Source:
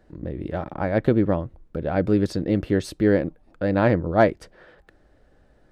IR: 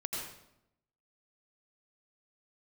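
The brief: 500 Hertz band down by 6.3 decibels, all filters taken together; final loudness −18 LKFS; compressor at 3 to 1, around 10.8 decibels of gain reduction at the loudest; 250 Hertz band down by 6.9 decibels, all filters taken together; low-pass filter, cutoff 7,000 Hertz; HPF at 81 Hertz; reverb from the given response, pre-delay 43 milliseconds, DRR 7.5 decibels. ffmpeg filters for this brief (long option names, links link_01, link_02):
-filter_complex "[0:a]highpass=81,lowpass=7000,equalizer=frequency=250:width_type=o:gain=-7.5,equalizer=frequency=500:width_type=o:gain=-6,acompressor=threshold=-30dB:ratio=3,asplit=2[link_01][link_02];[1:a]atrim=start_sample=2205,adelay=43[link_03];[link_02][link_03]afir=irnorm=-1:irlink=0,volume=-10dB[link_04];[link_01][link_04]amix=inputs=2:normalize=0,volume=16dB"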